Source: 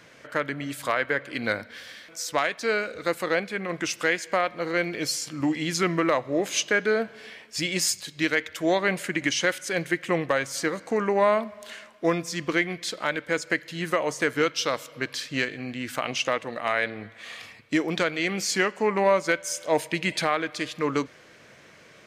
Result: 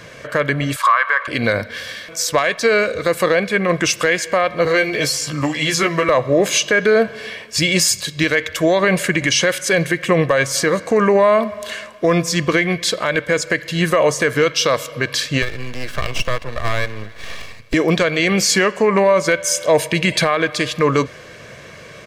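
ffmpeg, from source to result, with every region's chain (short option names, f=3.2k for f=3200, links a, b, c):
-filter_complex "[0:a]asettb=1/sr,asplit=3[a][b][c];[a]atrim=end=0.764[d];[b]atrim=start=0.76:end=1.28,asetpts=PTS-STARTPTS,afade=t=in:d=0.004:c=qsin,afade=t=out:st=0.516:d=0.004:c=qsin,highpass=f=1.1k:t=q:w=6,highshelf=f=9.2k:g=-11[e];[c]atrim=start=1.276[f];[d][e]acrossfade=d=0.004:c1=hsin:c2=qsin[g];[g][f]acrossfade=d=0.004:c1=qsin:c2=hsin,asettb=1/sr,asplit=3[h][i][j];[h]atrim=end=4.654[k];[i]atrim=start=4.65:end=6.09,asetpts=PTS-STARTPTS,afade=t=in:d=0.004:c=qsin,afade=t=out:st=1.436:d=0.004:c=qsin,asplit=2[l][m];[m]adelay=14,volume=-3.5dB[n];[l][n]amix=inputs=2:normalize=0,atrim=end_sample=63504,acrossover=split=450|2500|7600[o][p][q][r];[o]acompressor=threshold=-38dB:ratio=3[s];[p]acompressor=threshold=-31dB:ratio=3[t];[q]acompressor=threshold=-34dB:ratio=3[u];[r]acompressor=threshold=-42dB:ratio=3[v];[s][t][u][v]amix=inputs=4:normalize=0[w];[j]atrim=start=6.086[x];[k][w]acrossfade=d=0.004:c1=hsin:c2=qsin[y];[y][x]acrossfade=d=0.004:c1=qsin:c2=hsin,asettb=1/sr,asplit=3[z][aa][ab];[z]atrim=end=15.424[ac];[aa]atrim=start=15.42:end=17.74,asetpts=PTS-STARTPTS,afade=t=in:d=0.004:c=qsin,afade=t=out:st=2.316:d=0.004:c=qsin,acrossover=split=270|820|4200[ad][ae][af][ag];[ad]acompressor=threshold=-47dB:ratio=3[ah];[ae]acompressor=threshold=-41dB:ratio=3[ai];[af]acompressor=threshold=-28dB:ratio=3[aj];[ag]acompressor=threshold=-57dB:ratio=3[ak];[ah][ai][aj][ak]amix=inputs=4:normalize=0,aeval=exprs='max(val(0),0)':c=same[al];[ab]atrim=start=17.736[am];[ac][al]acrossfade=d=0.004:c1=hsin:c2=qsin[an];[an][am]acrossfade=d=0.004:c1=qsin:c2=hsin,lowshelf=f=260:g=6,aecho=1:1:1.8:0.41,alimiter=level_in=16dB:limit=-1dB:release=50:level=0:latency=1,volume=-4.5dB"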